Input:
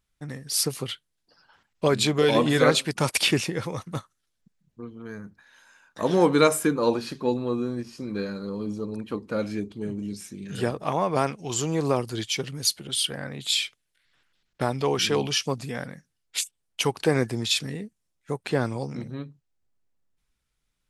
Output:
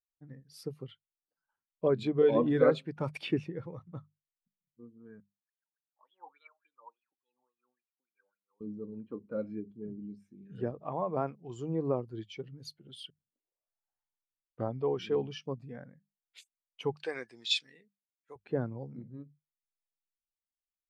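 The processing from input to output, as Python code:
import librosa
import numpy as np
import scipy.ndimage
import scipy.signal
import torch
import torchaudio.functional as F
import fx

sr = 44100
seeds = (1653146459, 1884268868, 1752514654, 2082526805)

y = fx.wah_lfo(x, sr, hz=3.5, low_hz=770.0, high_hz=3400.0, q=14.0, at=(5.2, 8.61))
y = fx.weighting(y, sr, curve='ITU-R 468', at=(16.96, 18.36))
y = fx.edit(y, sr, fx.tape_start(start_s=13.1, length_s=1.71), tone=tone)
y = fx.peak_eq(y, sr, hz=8600.0, db=-13.0, octaves=2.2)
y = fx.hum_notches(y, sr, base_hz=50, count=4)
y = fx.spectral_expand(y, sr, expansion=1.5)
y = y * librosa.db_to_amplitude(-5.0)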